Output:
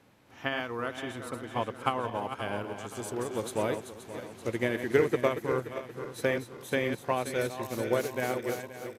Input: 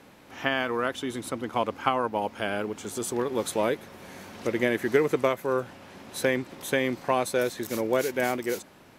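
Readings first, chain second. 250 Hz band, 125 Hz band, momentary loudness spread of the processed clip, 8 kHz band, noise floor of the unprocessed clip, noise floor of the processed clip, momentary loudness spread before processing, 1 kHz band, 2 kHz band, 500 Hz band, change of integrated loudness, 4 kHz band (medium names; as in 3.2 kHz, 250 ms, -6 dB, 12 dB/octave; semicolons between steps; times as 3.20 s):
-4.5 dB, +0.5 dB, 11 LU, -6.5 dB, -53 dBFS, -51 dBFS, 9 LU, -4.5 dB, -4.0 dB, -3.5 dB, -4.0 dB, -5.0 dB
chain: backward echo that repeats 263 ms, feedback 70%, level -7 dB; peaking EQ 110 Hz +8.5 dB 0.53 oct; resampled via 32 kHz; upward expansion 1.5:1, over -33 dBFS; trim -2 dB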